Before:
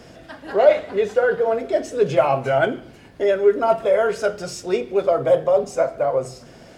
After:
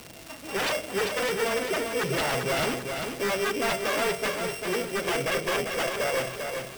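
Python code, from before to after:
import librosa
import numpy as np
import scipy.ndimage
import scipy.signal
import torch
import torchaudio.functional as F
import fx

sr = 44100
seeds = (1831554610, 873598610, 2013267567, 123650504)

p1 = np.r_[np.sort(x[:len(x) // 16 * 16].reshape(-1, 16), axis=1).ravel(), x[len(x) // 16 * 16:]]
p2 = fx.dmg_crackle(p1, sr, seeds[0], per_s=380.0, level_db=-27.0)
p3 = 10.0 ** (-17.5 / 20.0) * (np.abs((p2 / 10.0 ** (-17.5 / 20.0) + 3.0) % 4.0 - 2.0) - 1.0)
p4 = p3 + fx.echo_feedback(p3, sr, ms=395, feedback_pct=44, wet_db=-5.5, dry=0)
y = p4 * librosa.db_to_amplitude(-4.5)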